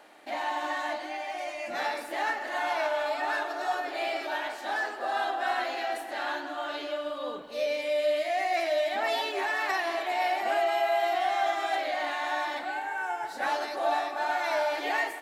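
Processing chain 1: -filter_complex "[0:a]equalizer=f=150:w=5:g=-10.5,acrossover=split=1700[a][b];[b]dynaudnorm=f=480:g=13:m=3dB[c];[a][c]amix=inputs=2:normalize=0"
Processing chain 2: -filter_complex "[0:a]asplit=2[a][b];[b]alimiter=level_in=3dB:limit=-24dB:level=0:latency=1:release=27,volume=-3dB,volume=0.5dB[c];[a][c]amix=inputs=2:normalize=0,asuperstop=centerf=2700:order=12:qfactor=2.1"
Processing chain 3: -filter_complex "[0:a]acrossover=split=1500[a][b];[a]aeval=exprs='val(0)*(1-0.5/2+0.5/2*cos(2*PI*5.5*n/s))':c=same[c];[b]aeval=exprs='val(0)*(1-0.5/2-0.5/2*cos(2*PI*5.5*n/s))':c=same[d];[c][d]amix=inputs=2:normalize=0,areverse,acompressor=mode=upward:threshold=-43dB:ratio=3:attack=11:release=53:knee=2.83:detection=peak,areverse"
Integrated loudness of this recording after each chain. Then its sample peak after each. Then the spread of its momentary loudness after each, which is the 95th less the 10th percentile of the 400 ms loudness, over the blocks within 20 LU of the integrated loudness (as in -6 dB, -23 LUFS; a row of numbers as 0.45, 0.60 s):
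-29.5, -26.0, -32.0 LUFS; -14.0, -13.5, -18.0 dBFS; 7, 5, 7 LU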